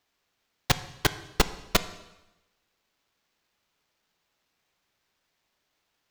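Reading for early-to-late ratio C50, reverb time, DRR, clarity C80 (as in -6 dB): 14.5 dB, 1.0 s, 12.0 dB, 16.5 dB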